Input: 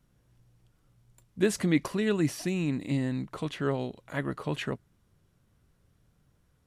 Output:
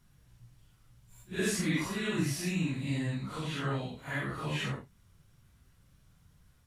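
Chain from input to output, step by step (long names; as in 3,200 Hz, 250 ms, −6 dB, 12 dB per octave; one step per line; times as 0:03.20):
random phases in long frames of 200 ms
parametric band 410 Hz −9.5 dB 2.1 octaves
in parallel at +1 dB: downward compressor, threshold −46 dBFS, peak gain reduction 17.5 dB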